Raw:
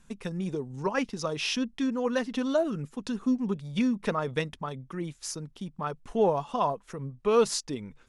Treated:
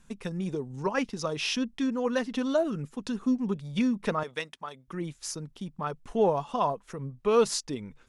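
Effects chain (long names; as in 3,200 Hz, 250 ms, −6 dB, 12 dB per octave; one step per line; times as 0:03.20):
0:04.23–0:04.88: high-pass filter 900 Hz 6 dB per octave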